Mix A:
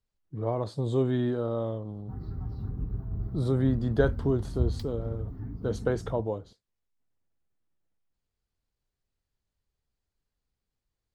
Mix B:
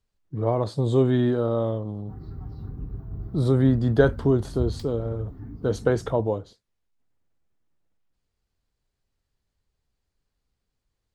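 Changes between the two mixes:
speech +6.0 dB; reverb: on, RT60 0.40 s

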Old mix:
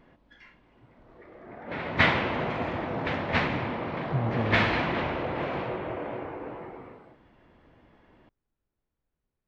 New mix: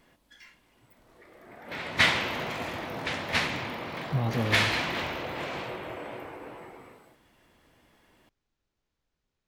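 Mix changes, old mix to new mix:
background -7.0 dB; master: remove tape spacing loss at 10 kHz 36 dB

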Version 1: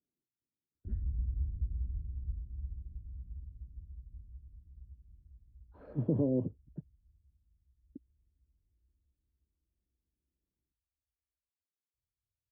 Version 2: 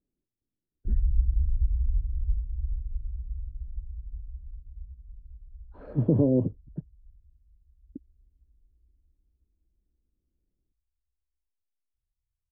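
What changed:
speech +7.5 dB; master: remove high-pass 95 Hz 12 dB/octave

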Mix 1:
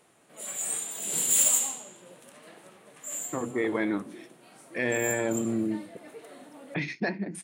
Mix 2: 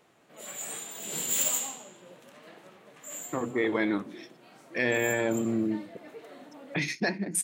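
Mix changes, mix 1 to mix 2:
speech: remove distance through air 240 m; master: add peaking EQ 9.5 kHz -15 dB 0.5 oct

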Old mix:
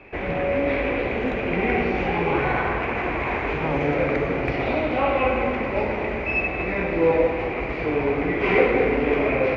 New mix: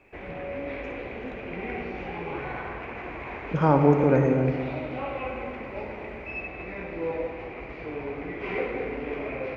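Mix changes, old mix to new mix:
speech +9.0 dB; background -11.5 dB

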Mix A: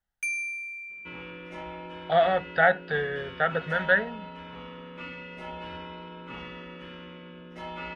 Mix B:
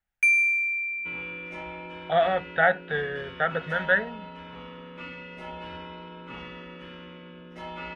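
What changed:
speech: add elliptic low-pass 3.7 kHz; first sound: add high-order bell 2 kHz +10.5 dB 1.1 oct

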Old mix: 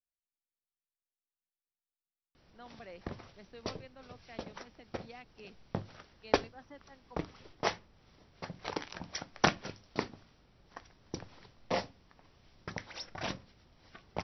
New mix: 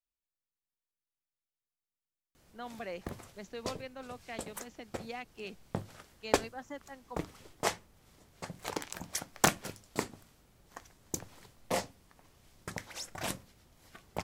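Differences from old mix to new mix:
speech +8.5 dB; master: remove brick-wall FIR low-pass 5.9 kHz

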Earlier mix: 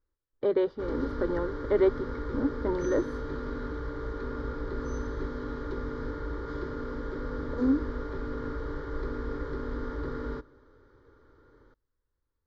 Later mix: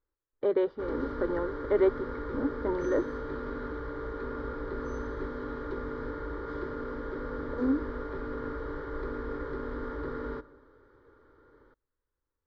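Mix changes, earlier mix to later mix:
background: send +8.5 dB; master: add tone controls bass -6 dB, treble -11 dB

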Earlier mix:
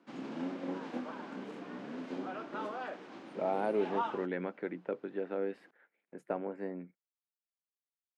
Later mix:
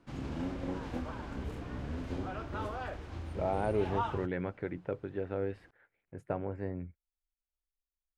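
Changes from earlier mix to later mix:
background: remove distance through air 61 m; master: remove steep high-pass 190 Hz 36 dB/octave

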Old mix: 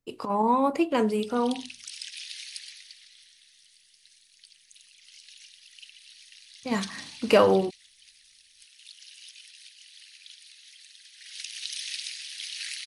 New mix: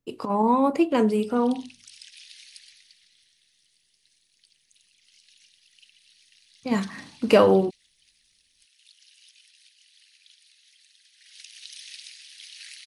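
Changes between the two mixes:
speech: add peaking EQ 220 Hz +4.5 dB 2.6 oct; background -7.5 dB

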